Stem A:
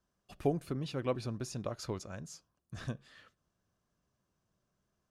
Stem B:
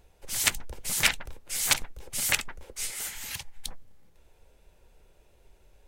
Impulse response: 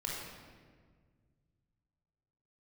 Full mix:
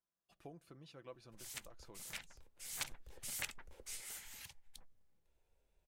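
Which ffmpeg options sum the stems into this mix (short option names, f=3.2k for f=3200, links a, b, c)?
-filter_complex "[0:a]lowshelf=f=320:g=-9,aecho=1:1:6:0.37,volume=-15dB[a];[1:a]adelay=1100,volume=-8.5dB,afade=t=in:st=2.58:d=0.31:silence=0.316228,afade=t=out:st=4.08:d=0.54:silence=0.298538[b];[a][b]amix=inputs=2:normalize=0,acompressor=threshold=-53dB:ratio=1.5"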